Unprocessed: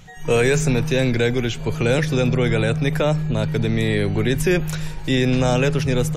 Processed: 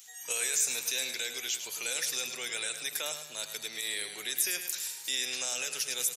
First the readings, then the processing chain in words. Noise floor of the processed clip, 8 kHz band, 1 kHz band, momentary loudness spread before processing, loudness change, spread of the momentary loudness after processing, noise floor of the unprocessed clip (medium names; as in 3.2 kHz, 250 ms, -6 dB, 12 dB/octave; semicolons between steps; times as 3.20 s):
-46 dBFS, +4.5 dB, -18.0 dB, 4 LU, -11.5 dB, 6 LU, -29 dBFS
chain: differentiator; peak limiter -24.5 dBFS, peak gain reduction 8 dB; tone controls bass -11 dB, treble +8 dB; feedback delay 105 ms, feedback 42%, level -9 dB